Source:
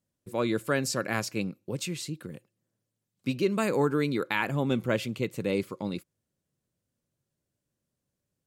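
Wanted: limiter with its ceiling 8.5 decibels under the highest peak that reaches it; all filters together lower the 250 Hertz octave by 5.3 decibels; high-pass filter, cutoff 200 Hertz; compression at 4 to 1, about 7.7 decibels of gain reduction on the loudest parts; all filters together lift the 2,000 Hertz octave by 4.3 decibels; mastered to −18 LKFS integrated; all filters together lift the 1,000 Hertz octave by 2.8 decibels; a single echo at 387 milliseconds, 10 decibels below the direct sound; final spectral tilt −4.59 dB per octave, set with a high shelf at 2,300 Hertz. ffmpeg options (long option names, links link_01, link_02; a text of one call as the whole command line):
ffmpeg -i in.wav -af "highpass=200,equalizer=frequency=250:width_type=o:gain=-5,equalizer=frequency=1000:width_type=o:gain=3,equalizer=frequency=2000:width_type=o:gain=8.5,highshelf=frequency=2300:gain=-8,acompressor=threshold=-30dB:ratio=4,alimiter=limit=-23dB:level=0:latency=1,aecho=1:1:387:0.316,volume=19dB" out.wav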